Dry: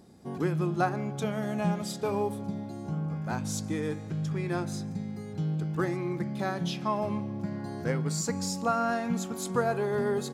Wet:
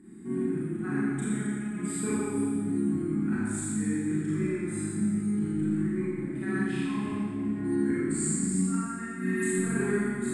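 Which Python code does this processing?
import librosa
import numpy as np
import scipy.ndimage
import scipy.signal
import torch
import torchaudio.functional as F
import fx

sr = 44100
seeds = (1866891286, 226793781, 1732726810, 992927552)

p1 = fx.hum_notches(x, sr, base_hz=50, count=6)
p2 = fx.spec_repair(p1, sr, seeds[0], start_s=9.07, length_s=0.33, low_hz=1600.0, high_hz=9500.0, source='before')
p3 = fx.curve_eq(p2, sr, hz=(140.0, 230.0, 350.0, 550.0, 1200.0, 1900.0, 2700.0, 5900.0, 8500.0, 14000.0), db=(0, 12, 11, -23, -1, 8, -3, -19, 13, -23))
p4 = fx.over_compress(p3, sr, threshold_db=-28.0, ratio=-0.5)
p5 = p4 + fx.echo_single(p4, sr, ms=83, db=-9.0, dry=0)
p6 = fx.rev_schroeder(p5, sr, rt60_s=1.7, comb_ms=29, drr_db=-9.0)
y = p6 * 10.0 ** (-9.0 / 20.0)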